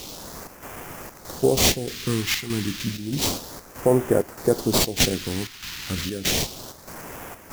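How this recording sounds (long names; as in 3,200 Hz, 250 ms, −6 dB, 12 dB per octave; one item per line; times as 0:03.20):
a quantiser's noise floor 6 bits, dither triangular
chopped level 1.6 Hz, depth 60%, duty 75%
aliases and images of a low sample rate 9,200 Hz, jitter 20%
phaser sweep stages 2, 0.31 Hz, lowest notch 550–3,800 Hz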